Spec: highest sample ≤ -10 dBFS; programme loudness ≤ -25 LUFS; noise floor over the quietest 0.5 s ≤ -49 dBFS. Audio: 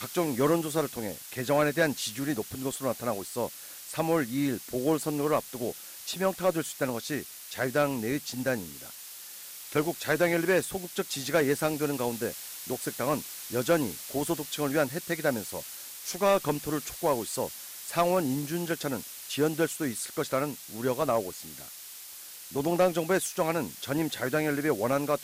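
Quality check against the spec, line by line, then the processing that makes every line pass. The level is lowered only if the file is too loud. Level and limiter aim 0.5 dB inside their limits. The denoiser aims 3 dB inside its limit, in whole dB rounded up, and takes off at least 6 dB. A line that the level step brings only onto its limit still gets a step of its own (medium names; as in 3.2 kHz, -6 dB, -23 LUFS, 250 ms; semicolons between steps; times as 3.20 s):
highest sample -14.5 dBFS: pass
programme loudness -29.5 LUFS: pass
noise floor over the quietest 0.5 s -45 dBFS: fail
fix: noise reduction 7 dB, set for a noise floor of -45 dBFS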